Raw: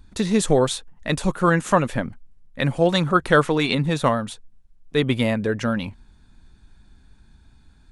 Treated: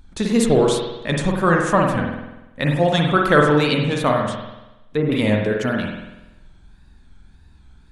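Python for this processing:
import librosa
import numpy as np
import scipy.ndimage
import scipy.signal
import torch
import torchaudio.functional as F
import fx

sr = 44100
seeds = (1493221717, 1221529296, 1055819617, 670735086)

y = fx.wow_flutter(x, sr, seeds[0], rate_hz=2.1, depth_cents=110.0)
y = fx.rev_spring(y, sr, rt60_s=1.0, pass_ms=(47,), chirp_ms=55, drr_db=0.5)
y = fx.env_lowpass_down(y, sr, base_hz=1100.0, full_db=-18.5, at=(4.3, 5.12))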